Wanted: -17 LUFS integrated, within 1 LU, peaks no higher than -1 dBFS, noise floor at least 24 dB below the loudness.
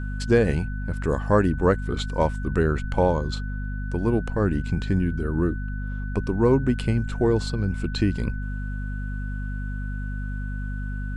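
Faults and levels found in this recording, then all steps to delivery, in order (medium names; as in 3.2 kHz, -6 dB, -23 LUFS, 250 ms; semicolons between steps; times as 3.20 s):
hum 50 Hz; highest harmonic 250 Hz; hum level -27 dBFS; steady tone 1.5 kHz; tone level -40 dBFS; loudness -25.5 LUFS; peak level -6.0 dBFS; loudness target -17.0 LUFS
-> hum notches 50/100/150/200/250 Hz; band-stop 1.5 kHz, Q 30; trim +8.5 dB; peak limiter -1 dBFS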